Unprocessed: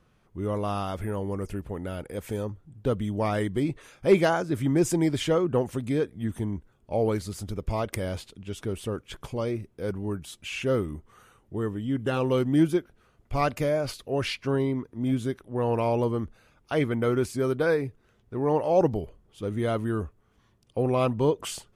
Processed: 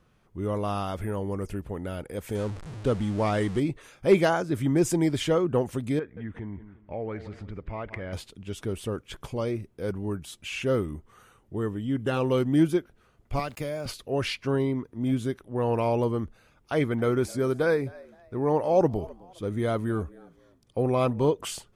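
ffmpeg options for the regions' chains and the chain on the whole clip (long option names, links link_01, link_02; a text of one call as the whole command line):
ffmpeg -i in.wav -filter_complex "[0:a]asettb=1/sr,asplit=3[link_01][link_02][link_03];[link_01]atrim=end=2.354[link_04];[link_02]atrim=start=2.35:end=3.6,asetpts=PTS-STARTPTS,afade=type=in:duration=0.004:curve=qsin,afade=type=out:start_time=1.246:duration=0.004:curve=qsin,aeval=exprs='val(0)+0.5*0.0168*sgn(val(0))':channel_layout=same,lowpass=frequency=10000:width=0.5412,lowpass=frequency=10000:width=1.3066[link_05];[link_03]atrim=start=3.596[link_06];[link_04][link_05]acrossfade=duration=0.004:curve1=hsin:curve2=qsin[link_07];[link_07][link_06]acrossfade=duration=0.004:curve1=qsin:curve2=hsin,asettb=1/sr,asplit=3[link_08][link_09][link_10];[link_08]atrim=end=5.994[link_11];[link_09]atrim=start=5.99:end=8.13,asetpts=PTS-STARTPTS,afade=type=in:duration=0.004:curve=qsin,afade=type=out:start_time=2.136:duration=0.004:curve=qsin,aecho=1:1:177|354:0.126|0.034,atrim=end_sample=94374,acompressor=threshold=-37dB:ratio=2:attack=3.2:release=140:knee=1:detection=peak,lowpass=frequency=2000:width_type=q:width=2.3[link_12];[link_10]atrim=start=8.126[link_13];[link_11][link_12]acrossfade=duration=0.004:curve1=hsin:curve2=qsin[link_14];[link_14][link_13]acrossfade=duration=0.004:curve1=qsin:curve2=hsin,asettb=1/sr,asplit=3[link_15][link_16][link_17];[link_15]atrim=end=13.394[link_18];[link_16]atrim=start=13.39:end=13.86,asetpts=PTS-STARTPTS,afade=type=in:duration=0.004:curve=qsin,afade=type=out:start_time=0.466:duration=0.004:curve=qsin,bandreject=frequency=6000:width=8.8,acrossover=split=120|2500[link_19][link_20][link_21];[link_19]acompressor=threshold=-43dB:ratio=4[link_22];[link_20]acompressor=threshold=-31dB:ratio=4[link_23];[link_21]acompressor=threshold=-41dB:ratio=4[link_24];[link_22][link_23][link_24]amix=inputs=3:normalize=0,aeval=exprs='val(0)*gte(abs(val(0)),0.00251)':channel_layout=same[link_25];[link_17]atrim=start=13.856[link_26];[link_18][link_25]acrossfade=duration=0.004:curve1=hsin:curve2=qsin[link_27];[link_27][link_26]acrossfade=duration=0.004:curve1=qsin:curve2=hsin,asettb=1/sr,asplit=3[link_28][link_29][link_30];[link_28]atrim=end=16.724[link_31];[link_29]atrim=start=16.72:end=21.3,asetpts=PTS-STARTPTS,afade=type=in:duration=0.004:curve=qsin,afade=type=out:start_time=4.576:duration=0.004:curve=qsin,bandreject=frequency=2800:width=8.1,asplit=3[link_32][link_33][link_34];[link_33]adelay=260,afreqshift=90,volume=-22.5dB[link_35];[link_34]adelay=520,afreqshift=180,volume=-32.7dB[link_36];[link_32][link_35][link_36]amix=inputs=3:normalize=0,atrim=end_sample=201978[link_37];[link_30]atrim=start=21.296[link_38];[link_31][link_37]acrossfade=duration=0.004:curve1=hsin:curve2=qsin[link_39];[link_39][link_38]acrossfade=duration=0.004:curve1=qsin:curve2=hsin" out.wav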